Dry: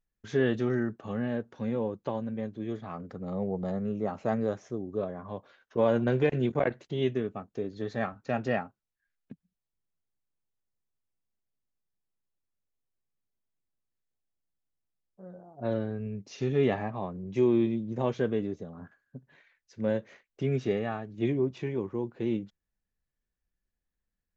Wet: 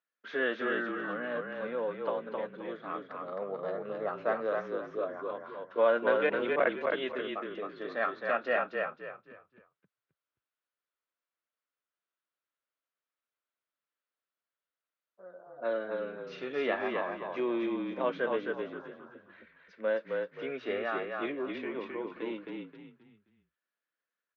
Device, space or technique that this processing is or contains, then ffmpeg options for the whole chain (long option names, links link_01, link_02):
phone earpiece: -filter_complex "[0:a]highpass=290,highpass=380,equalizer=frequency=400:width_type=q:width=4:gain=-7,equalizer=frequency=810:width_type=q:width=4:gain=-10,equalizer=frequency=1400:width_type=q:width=4:gain=6,lowpass=frequency=3900:width=0.5412,lowpass=frequency=3900:width=1.3066,equalizer=frequency=840:width_type=o:width=2.3:gain=4.5,asplit=5[link_01][link_02][link_03][link_04][link_05];[link_02]adelay=264,afreqshift=-33,volume=-3.5dB[link_06];[link_03]adelay=528,afreqshift=-66,volume=-13.4dB[link_07];[link_04]adelay=792,afreqshift=-99,volume=-23.3dB[link_08];[link_05]adelay=1056,afreqshift=-132,volume=-33.2dB[link_09];[link_01][link_06][link_07][link_08][link_09]amix=inputs=5:normalize=0"